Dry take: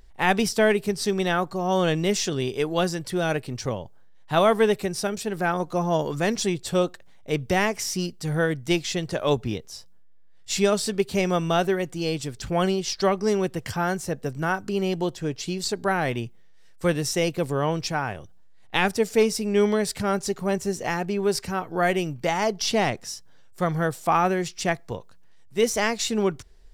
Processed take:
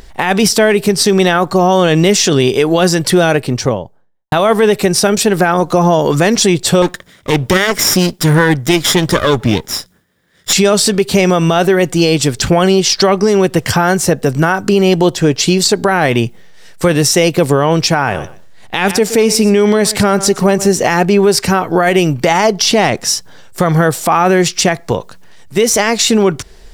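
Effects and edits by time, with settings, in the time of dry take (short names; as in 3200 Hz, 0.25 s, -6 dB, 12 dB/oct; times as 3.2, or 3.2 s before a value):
3.16–4.32 studio fade out
6.82–10.53 minimum comb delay 0.56 ms
17.95–20.7 feedback echo 0.121 s, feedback 18%, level -19.5 dB
whole clip: low shelf 79 Hz -10 dB; compressor 1.5:1, threshold -32 dBFS; maximiser +22.5 dB; gain -1 dB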